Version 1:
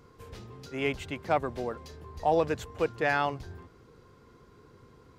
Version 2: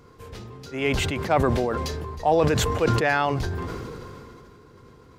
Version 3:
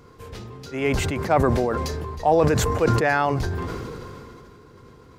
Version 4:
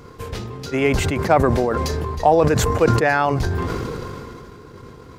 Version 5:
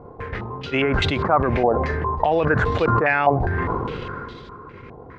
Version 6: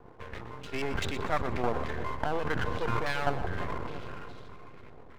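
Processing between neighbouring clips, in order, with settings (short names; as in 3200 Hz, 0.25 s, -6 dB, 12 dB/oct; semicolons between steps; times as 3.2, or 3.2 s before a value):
sustainer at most 21 dB/s; gain +4.5 dB
dynamic EQ 3200 Hz, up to -7 dB, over -43 dBFS, Q 1.6; gain +2 dB
in parallel at +2.5 dB: compressor, threshold -27 dBFS, peak gain reduction 13 dB; on the sum: transient shaper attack +3 dB, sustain -5 dB
limiter -9.5 dBFS, peak gain reduction 7.5 dB; stepped low-pass 4.9 Hz 760–3700 Hz; gain -1.5 dB
half-wave rectifier; on a send: split-band echo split 760 Hz, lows 0.341 s, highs 0.12 s, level -12.5 dB; on the sum: gain -8 dB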